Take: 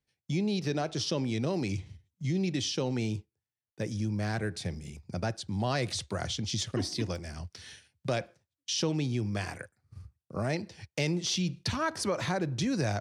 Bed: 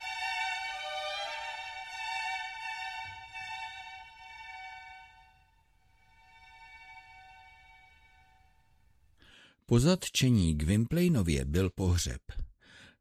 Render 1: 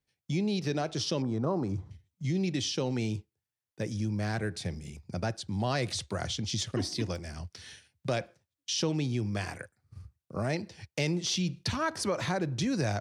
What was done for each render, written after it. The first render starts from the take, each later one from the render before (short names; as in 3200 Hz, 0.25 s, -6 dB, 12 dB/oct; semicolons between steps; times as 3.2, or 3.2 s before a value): 1.22–1.91 resonant high shelf 1700 Hz -12.5 dB, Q 3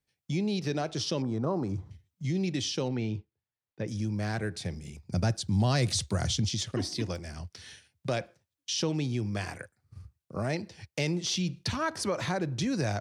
2.88–3.88 air absorption 190 m; 5.12–6.49 tone controls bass +8 dB, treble +7 dB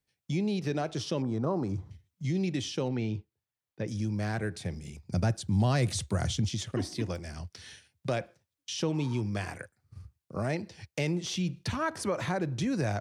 8.96–9.19 spectral repair 870–2100 Hz before; dynamic EQ 4800 Hz, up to -7 dB, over -48 dBFS, Q 1.2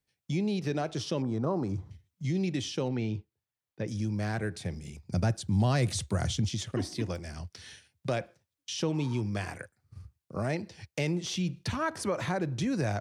nothing audible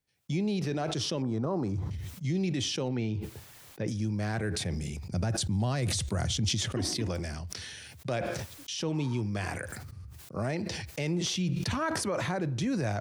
limiter -22 dBFS, peak gain reduction 5.5 dB; sustainer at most 24 dB/s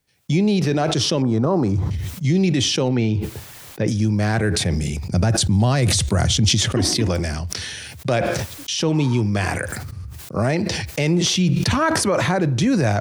gain +12 dB